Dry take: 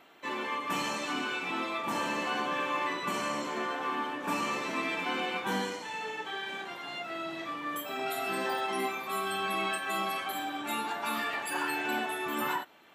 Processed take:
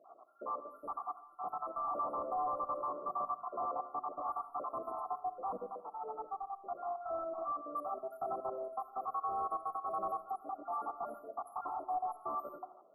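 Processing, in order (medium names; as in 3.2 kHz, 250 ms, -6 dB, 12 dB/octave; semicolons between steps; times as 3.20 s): random holes in the spectrogram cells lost 55%; in parallel at +1 dB: peak limiter -29.5 dBFS, peak gain reduction 8 dB; on the sum: vowel filter a; saturation -38 dBFS, distortion -11 dB; brick-wall FIR band-stop 1.4–9.7 kHz; de-hum 52.82 Hz, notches 8; reverberation RT60 0.60 s, pre-delay 35 ms, DRR 12.5 dB; trim +6 dB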